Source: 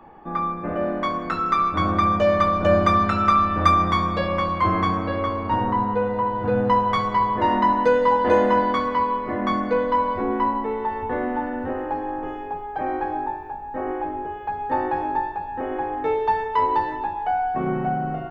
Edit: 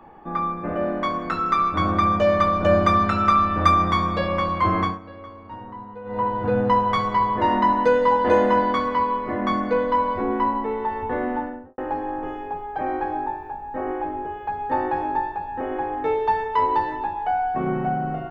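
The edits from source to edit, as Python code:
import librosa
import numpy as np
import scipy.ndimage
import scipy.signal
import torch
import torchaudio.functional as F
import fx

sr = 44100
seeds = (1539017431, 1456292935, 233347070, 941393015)

y = fx.studio_fade_out(x, sr, start_s=11.31, length_s=0.47)
y = fx.edit(y, sr, fx.fade_down_up(start_s=4.82, length_s=1.39, db=-15.5, fade_s=0.17), tone=tone)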